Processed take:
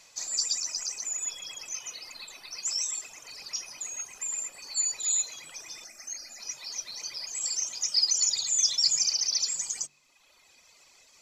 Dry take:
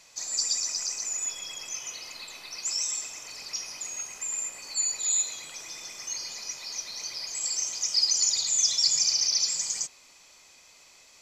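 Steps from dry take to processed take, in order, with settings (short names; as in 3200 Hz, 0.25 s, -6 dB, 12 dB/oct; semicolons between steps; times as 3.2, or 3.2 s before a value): reverb removal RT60 1.4 s; 5.84–6.4 fixed phaser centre 670 Hz, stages 8; de-hum 48.36 Hz, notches 9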